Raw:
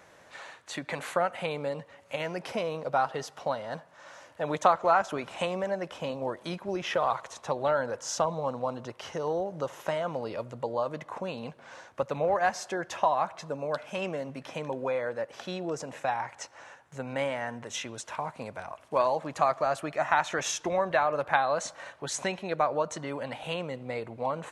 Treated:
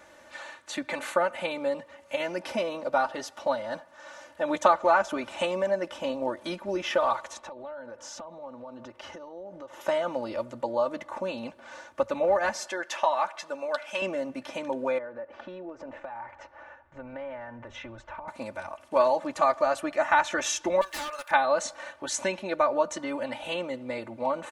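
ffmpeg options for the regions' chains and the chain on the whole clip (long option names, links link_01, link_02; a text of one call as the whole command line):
ffmpeg -i in.wav -filter_complex "[0:a]asettb=1/sr,asplit=3[link_01][link_02][link_03];[link_01]atrim=end=7.394[link_04];[link_02]atrim=start=7.39:end=9.81,asetpts=PTS-STARTPTS,afade=type=in:duration=0.004:curve=qsin,afade=type=out:start_time=2.416:duration=0.004:curve=qsin,highshelf=frequency=4900:gain=-11,acompressor=threshold=-40dB:ratio=10:attack=3.2:release=140:knee=1:detection=peak[link_05];[link_03]atrim=start=9.806[link_06];[link_04][link_05]acrossfade=duration=0.004:curve1=hsin:curve2=qsin[link_07];[link_07][link_06]acrossfade=duration=0.004:curve1=qsin:curve2=hsin,asettb=1/sr,asplit=3[link_08][link_09][link_10];[link_08]atrim=end=12.674[link_11];[link_09]atrim=start=12.67:end=14.02,asetpts=PTS-STARTPTS,afade=type=in:duration=0.004:curve=qsin,afade=type=out:start_time=1.346:duration=0.004:curve=qsin,highpass=frequency=690:poles=1,equalizer=frequency=2400:width=0.52:gain=3.5[link_12];[link_10]atrim=start=14.016[link_13];[link_11][link_12]acrossfade=duration=0.004:curve1=hsin:curve2=qsin[link_14];[link_14][link_13]acrossfade=duration=0.004:curve1=qsin:curve2=hsin,asettb=1/sr,asplit=3[link_15][link_16][link_17];[link_15]atrim=end=14.984[link_18];[link_16]atrim=start=14.98:end=18.28,asetpts=PTS-STARTPTS,afade=type=in:duration=0.004:curve=qsin,afade=type=out:start_time=3.296:duration=0.004:curve=qsin,lowpass=1800,asubboost=boost=12:cutoff=69,acompressor=threshold=-38dB:ratio=6:attack=3.2:release=140:knee=1:detection=peak[link_19];[link_17]atrim=start=18.276[link_20];[link_18][link_19]acrossfade=duration=0.004:curve1=hsin:curve2=qsin[link_21];[link_21][link_20]acrossfade=duration=0.004:curve1=qsin:curve2=hsin,asettb=1/sr,asplit=3[link_22][link_23][link_24];[link_22]atrim=end=20.814[link_25];[link_23]atrim=start=20.81:end=21.31,asetpts=PTS-STARTPTS,afade=type=in:duration=0.004:curve=qsin,afade=type=out:start_time=0.496:duration=0.004:curve=qsin,highpass=1300,aemphasis=mode=production:type=75fm,aeval=exprs='0.0251*(abs(mod(val(0)/0.0251+3,4)-2)-1)':channel_layout=same[link_26];[link_24]atrim=start=21.306[link_27];[link_25][link_26]acrossfade=duration=0.004:curve1=hsin:curve2=qsin[link_28];[link_28][link_27]acrossfade=duration=0.004:curve1=qsin:curve2=hsin,bandreject=frequency=50:width_type=h:width=6,bandreject=frequency=100:width_type=h:width=6,aecho=1:1:3.4:0.85" out.wav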